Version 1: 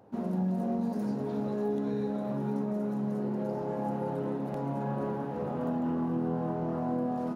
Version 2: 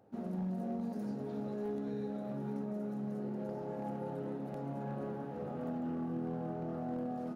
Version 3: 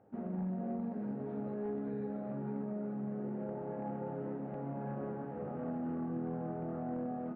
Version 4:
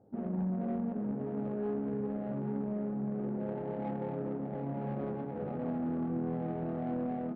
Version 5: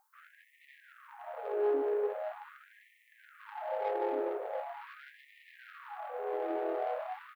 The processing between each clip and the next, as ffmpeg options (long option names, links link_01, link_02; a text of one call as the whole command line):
ffmpeg -i in.wav -af "bandreject=frequency=1000:width=6.1,asoftclip=type=hard:threshold=-24.5dB,volume=-7dB" out.wav
ffmpeg -i in.wav -af "lowpass=frequency=2300:width=0.5412,lowpass=frequency=2300:width=1.3066" out.wav
ffmpeg -i in.wav -af "adynamicsmooth=sensitivity=5:basefreq=680,volume=4dB" out.wav
ffmpeg -i in.wav -af "crystalizer=i=2.5:c=0,aecho=1:1:152:0.376,afftfilt=real='re*gte(b*sr/1024,300*pow(1800/300,0.5+0.5*sin(2*PI*0.42*pts/sr)))':imag='im*gte(b*sr/1024,300*pow(1800/300,0.5+0.5*sin(2*PI*0.42*pts/sr)))':win_size=1024:overlap=0.75,volume=6dB" out.wav